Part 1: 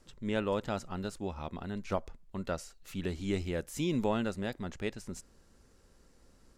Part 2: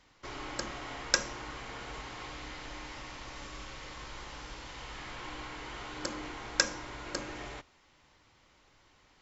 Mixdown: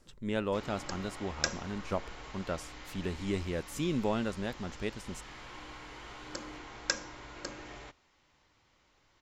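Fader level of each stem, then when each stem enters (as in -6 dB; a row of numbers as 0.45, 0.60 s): -0.5, -4.5 dB; 0.00, 0.30 s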